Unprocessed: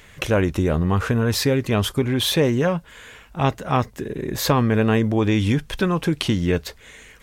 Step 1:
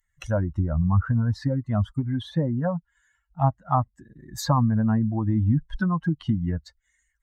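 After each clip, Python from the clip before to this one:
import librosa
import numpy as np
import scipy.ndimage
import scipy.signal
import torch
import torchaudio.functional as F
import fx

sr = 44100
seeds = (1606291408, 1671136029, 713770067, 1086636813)

y = fx.bin_expand(x, sr, power=2.0)
y = fx.env_lowpass_down(y, sr, base_hz=970.0, full_db=-20.0)
y = fx.fixed_phaser(y, sr, hz=1000.0, stages=4)
y = F.gain(torch.from_numpy(y), 4.5).numpy()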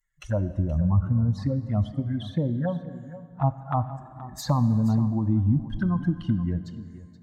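y = fx.env_flanger(x, sr, rest_ms=6.5, full_db=-20.5)
y = y + 10.0 ** (-15.5 / 20.0) * np.pad(y, (int(475 * sr / 1000.0), 0))[:len(y)]
y = fx.rev_plate(y, sr, seeds[0], rt60_s=2.6, hf_ratio=0.6, predelay_ms=0, drr_db=12.0)
y = F.gain(torch.from_numpy(y), -1.0).numpy()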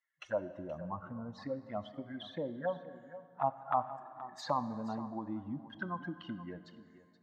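y = fx.bandpass_edges(x, sr, low_hz=490.0, high_hz=3400.0)
y = F.gain(torch.from_numpy(y), -2.0).numpy()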